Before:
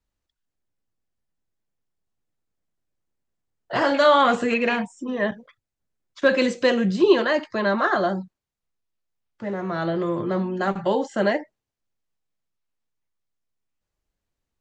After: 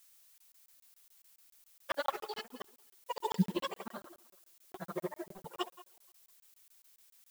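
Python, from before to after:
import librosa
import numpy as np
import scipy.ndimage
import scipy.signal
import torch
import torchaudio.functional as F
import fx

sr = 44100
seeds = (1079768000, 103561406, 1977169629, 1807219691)

p1 = fx.pitch_trill(x, sr, semitones=10.0, every_ms=478)
p2 = fx.chorus_voices(p1, sr, voices=6, hz=1.3, base_ms=14, depth_ms=3.0, mix_pct=55)
p3 = fx.granulator(p2, sr, seeds[0], grain_ms=60.0, per_s=14.0, spray_ms=100.0, spread_st=0)
p4 = p3 + fx.echo_thinned(p3, sr, ms=315, feedback_pct=37, hz=200.0, wet_db=-15, dry=0)
p5 = fx.stretch_grains(p4, sr, factor=0.5, grain_ms=131.0)
p6 = fx.dmg_noise_colour(p5, sr, seeds[1], colour='blue', level_db=-50.0)
p7 = fx.peak_eq(p6, sr, hz=280.0, db=-9.5, octaves=0.33)
p8 = fx.buffer_crackle(p7, sr, first_s=0.38, period_s=0.14, block=1024, kind='zero')
p9 = fx.upward_expand(p8, sr, threshold_db=-45.0, expansion=1.5)
y = p9 * 10.0 ** (-1.5 / 20.0)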